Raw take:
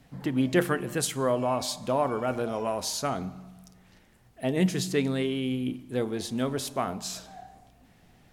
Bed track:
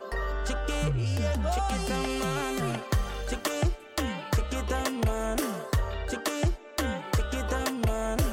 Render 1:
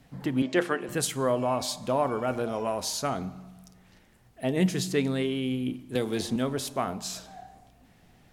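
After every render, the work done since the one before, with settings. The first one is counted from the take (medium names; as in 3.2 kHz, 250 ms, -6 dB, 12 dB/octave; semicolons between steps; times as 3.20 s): 0.42–0.89 s: band-pass 280–6800 Hz; 5.95–6.36 s: three bands compressed up and down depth 100%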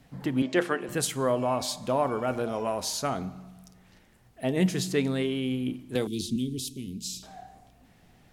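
6.07–7.23 s: inverse Chebyshev band-stop 630–1600 Hz, stop band 50 dB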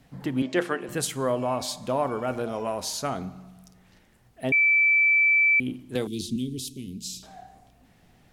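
4.52–5.60 s: bleep 2.32 kHz -16.5 dBFS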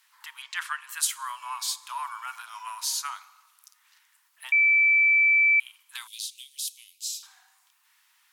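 Chebyshev high-pass 940 Hz, order 6; treble shelf 7.5 kHz +9.5 dB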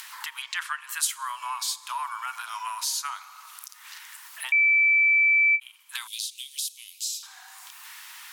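upward compressor, threshold -26 dBFS; endings held to a fixed fall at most 470 dB/s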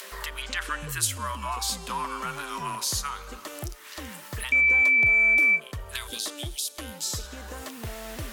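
add bed track -10 dB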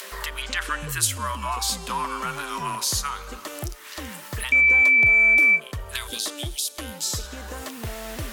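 trim +3.5 dB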